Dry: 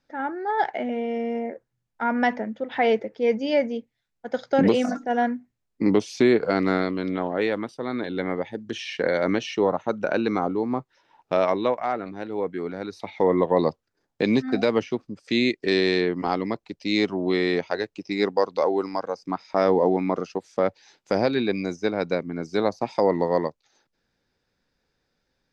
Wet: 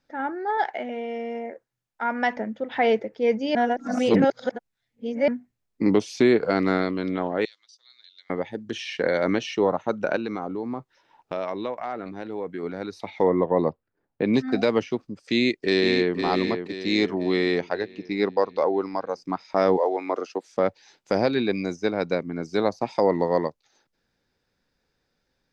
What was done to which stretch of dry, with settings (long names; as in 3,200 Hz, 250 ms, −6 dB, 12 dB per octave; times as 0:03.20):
0:00.57–0:02.37: low-shelf EQ 290 Hz −11 dB
0:03.55–0:05.28: reverse
0:07.45–0:08.30: flat-topped band-pass 5,300 Hz, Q 1.9
0:10.16–0:12.63: downward compressor 2.5 to 1, threshold −28 dBFS
0:13.29–0:14.34: high-frequency loss of the air 470 metres
0:15.23–0:16.16: delay throw 510 ms, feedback 50%, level −7.5 dB
0:17.69–0:19.09: high-frequency loss of the air 140 metres
0:19.76–0:20.46: high-pass filter 500 Hz → 220 Hz 24 dB per octave